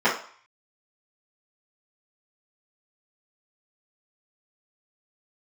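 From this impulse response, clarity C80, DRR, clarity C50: 12.0 dB, -12.5 dB, 7.0 dB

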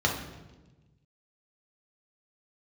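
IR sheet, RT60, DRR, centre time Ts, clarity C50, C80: 1.2 s, -1.0 dB, 33 ms, 5.5 dB, 8.5 dB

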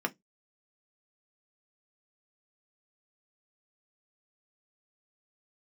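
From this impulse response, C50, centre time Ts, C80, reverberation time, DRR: 28.0 dB, 5 ms, 39.5 dB, 0.15 s, 4.0 dB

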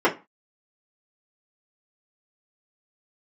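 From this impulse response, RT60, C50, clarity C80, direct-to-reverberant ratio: 0.25 s, 15.0 dB, 23.0 dB, -6.5 dB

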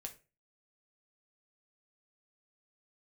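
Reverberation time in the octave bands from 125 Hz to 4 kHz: 0.40, 0.35, 0.35, 0.30, 0.30, 0.25 s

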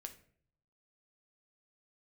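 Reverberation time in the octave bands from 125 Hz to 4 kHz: 1.0, 0.70, 0.65, 0.50, 0.50, 0.35 s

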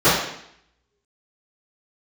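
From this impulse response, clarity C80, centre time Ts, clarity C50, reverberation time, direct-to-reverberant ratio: 5.0 dB, 58 ms, 1.0 dB, 0.70 s, -19.0 dB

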